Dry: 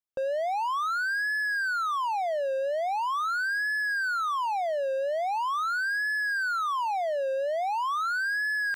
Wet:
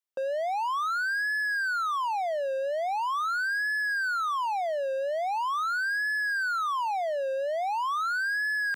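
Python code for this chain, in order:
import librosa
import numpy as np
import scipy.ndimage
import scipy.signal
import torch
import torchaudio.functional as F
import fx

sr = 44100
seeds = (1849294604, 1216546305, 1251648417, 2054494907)

y = scipy.signal.sosfilt(scipy.signal.bessel(2, 340.0, 'highpass', norm='mag', fs=sr, output='sos'), x)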